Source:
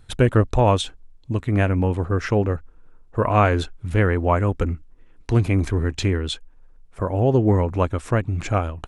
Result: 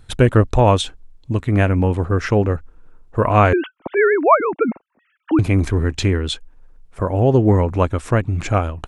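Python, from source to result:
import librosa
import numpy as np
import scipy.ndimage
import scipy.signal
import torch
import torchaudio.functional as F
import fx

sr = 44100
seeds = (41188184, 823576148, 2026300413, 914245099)

y = fx.sine_speech(x, sr, at=(3.53, 5.39))
y = F.gain(torch.from_numpy(y), 3.5).numpy()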